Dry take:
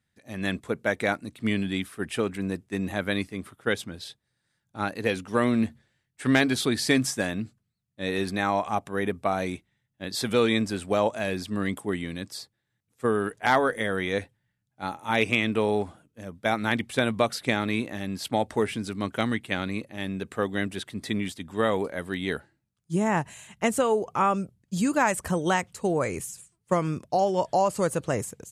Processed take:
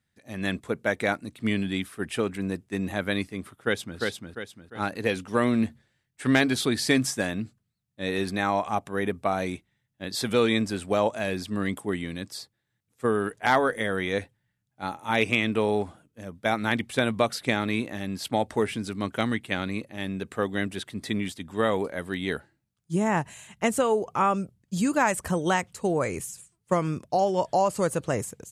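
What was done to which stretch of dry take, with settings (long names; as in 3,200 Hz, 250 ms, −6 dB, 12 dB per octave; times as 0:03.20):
0:03.56–0:03.99: delay throw 350 ms, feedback 40%, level −3 dB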